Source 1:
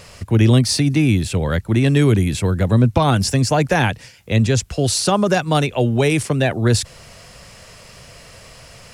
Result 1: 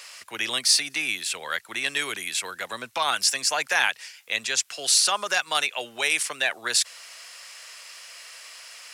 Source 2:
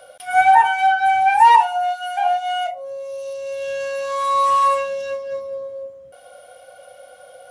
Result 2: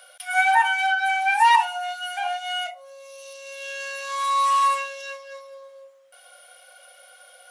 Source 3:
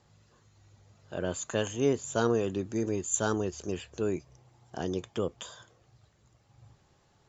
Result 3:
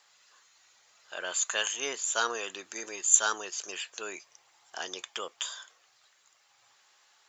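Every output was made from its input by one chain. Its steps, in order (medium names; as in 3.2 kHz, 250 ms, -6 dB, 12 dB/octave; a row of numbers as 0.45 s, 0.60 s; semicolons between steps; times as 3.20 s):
high-pass 1.4 kHz 12 dB/octave; peak normalisation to -6 dBFS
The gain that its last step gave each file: +1.5 dB, +2.0 dB, +9.0 dB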